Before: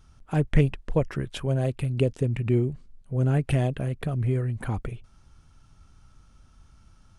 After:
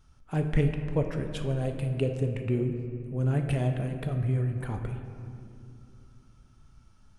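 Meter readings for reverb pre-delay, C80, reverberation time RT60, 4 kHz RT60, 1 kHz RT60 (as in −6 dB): 7 ms, 7.5 dB, 2.5 s, 1.3 s, 2.3 s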